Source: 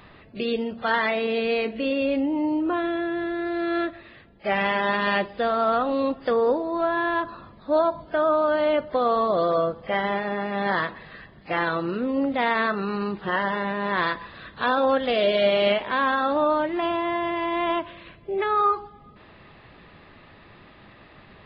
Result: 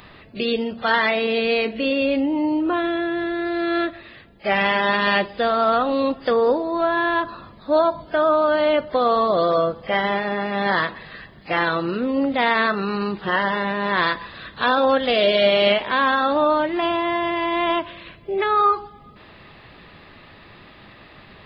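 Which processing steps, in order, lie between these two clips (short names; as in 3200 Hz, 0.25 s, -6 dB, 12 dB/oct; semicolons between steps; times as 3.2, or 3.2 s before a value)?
high shelf 3800 Hz +9 dB; gain +3 dB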